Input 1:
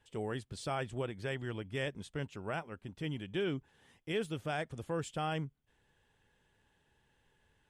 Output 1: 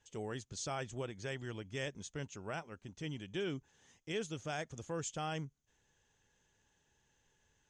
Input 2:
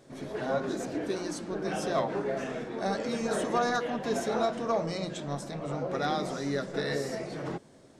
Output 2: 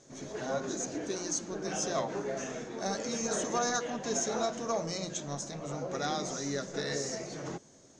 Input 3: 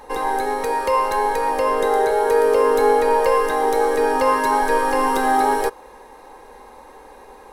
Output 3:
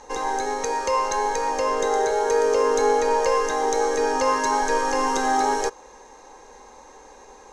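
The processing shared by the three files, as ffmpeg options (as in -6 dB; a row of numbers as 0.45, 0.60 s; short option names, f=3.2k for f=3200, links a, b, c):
-af "lowpass=f=6.5k:t=q:w=8.5,volume=-4dB"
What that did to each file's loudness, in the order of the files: -3.5, -2.5, -3.5 LU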